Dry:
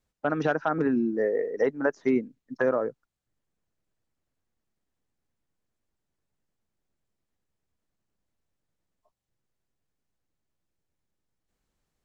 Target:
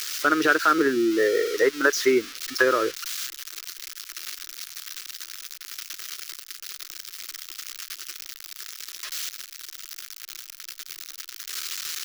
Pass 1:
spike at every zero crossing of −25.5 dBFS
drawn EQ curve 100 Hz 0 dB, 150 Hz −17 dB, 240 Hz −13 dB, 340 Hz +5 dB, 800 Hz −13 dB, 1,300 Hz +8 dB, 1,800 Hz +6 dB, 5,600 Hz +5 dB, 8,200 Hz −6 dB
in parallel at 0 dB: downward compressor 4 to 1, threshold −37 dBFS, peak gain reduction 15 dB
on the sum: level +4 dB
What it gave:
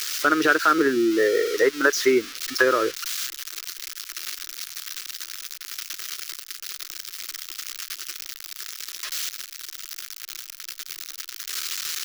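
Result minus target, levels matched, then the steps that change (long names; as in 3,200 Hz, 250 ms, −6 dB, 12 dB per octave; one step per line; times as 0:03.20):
downward compressor: peak gain reduction −8.5 dB
change: downward compressor 4 to 1, threshold −48.5 dBFS, peak gain reduction 24 dB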